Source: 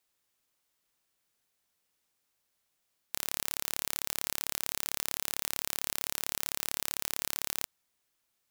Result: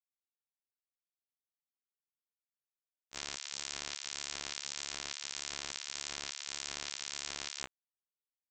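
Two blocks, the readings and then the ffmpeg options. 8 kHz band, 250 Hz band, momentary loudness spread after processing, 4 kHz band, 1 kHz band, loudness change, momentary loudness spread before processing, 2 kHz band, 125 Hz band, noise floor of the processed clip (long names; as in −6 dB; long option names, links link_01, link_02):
−5.0 dB, −6.0 dB, 3 LU, −1.0 dB, −5.0 dB, −7.0 dB, 2 LU, −3.0 dB, −7.5 dB, below −85 dBFS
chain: -af "afwtdn=0.00447,highshelf=frequency=5100:gain=6,acontrast=42,aresample=16000,acrusher=bits=3:mix=0:aa=0.000001,aresample=44100,afftfilt=real='re*1.73*eq(mod(b,3),0)':imag='im*1.73*eq(mod(b,3),0)':win_size=2048:overlap=0.75,volume=-2dB"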